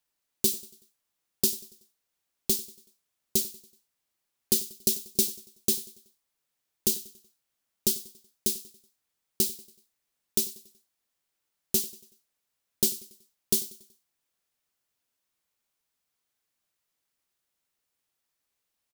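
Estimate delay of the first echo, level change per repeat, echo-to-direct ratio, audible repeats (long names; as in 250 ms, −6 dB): 94 ms, −7.0 dB, −18.0 dB, 3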